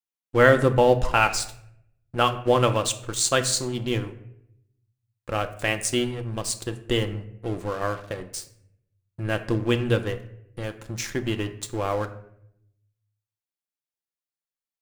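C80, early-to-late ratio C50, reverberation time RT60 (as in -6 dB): 16.0 dB, 13.5 dB, 0.75 s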